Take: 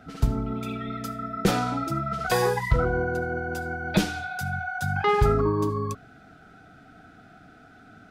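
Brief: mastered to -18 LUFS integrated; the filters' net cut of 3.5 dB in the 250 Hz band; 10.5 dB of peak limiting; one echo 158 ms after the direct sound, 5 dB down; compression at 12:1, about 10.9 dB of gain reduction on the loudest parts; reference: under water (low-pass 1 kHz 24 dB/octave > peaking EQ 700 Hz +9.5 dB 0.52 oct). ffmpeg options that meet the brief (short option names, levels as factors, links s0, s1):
-af "equalizer=f=250:t=o:g=-5.5,acompressor=threshold=0.0447:ratio=12,alimiter=level_in=1.19:limit=0.0631:level=0:latency=1,volume=0.841,lowpass=f=1000:w=0.5412,lowpass=f=1000:w=1.3066,equalizer=f=700:t=o:w=0.52:g=9.5,aecho=1:1:158:0.562,volume=5.01"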